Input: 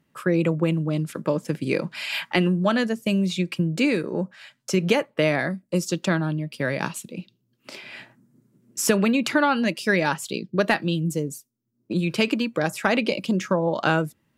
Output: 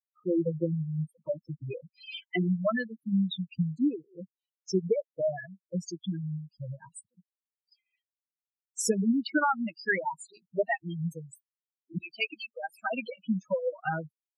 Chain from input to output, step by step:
spectral dynamics exaggerated over time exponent 3
0:11.98–0:12.74: high-pass filter 430 Hz 24 dB per octave
gate on every frequency bin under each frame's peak −10 dB strong

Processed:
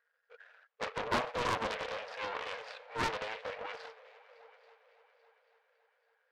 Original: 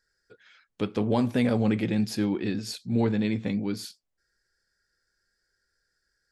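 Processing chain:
running median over 41 samples
low-pass filter 4,000 Hz 12 dB per octave
parametric band 1,800 Hz +9 dB 2.6 octaves
transient designer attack −9 dB, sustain +7 dB
soft clipping −20 dBFS, distortion −15 dB
transient designer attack +5 dB, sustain −3 dB
linear-phase brick-wall high-pass 440 Hz
on a send: echo machine with several playback heads 279 ms, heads second and third, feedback 43%, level −21 dB
on the sum: highs frequency-modulated by the lows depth 0.85 ms
level +1 dB

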